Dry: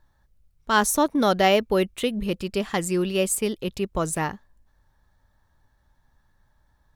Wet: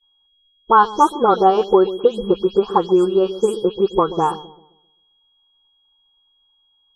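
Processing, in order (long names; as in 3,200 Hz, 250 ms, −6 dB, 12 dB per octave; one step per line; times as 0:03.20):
every frequency bin delayed by itself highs late, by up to 166 ms
flat-topped bell 650 Hz +14 dB 2.6 octaves
phaser with its sweep stopped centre 410 Hz, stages 8
in parallel at +1.5 dB: downward compressor, threshold −19 dBFS, peak gain reduction 14 dB
on the sum: transient designer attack +5 dB, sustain 0 dB
steady tone 3,300 Hz −31 dBFS
high-frequency loss of the air 88 metres
downward expander −24 dBFS
on a send: delay with a low-pass on its return 132 ms, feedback 35%, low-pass 570 Hz, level −12 dB
on the sum: level −6.5 dB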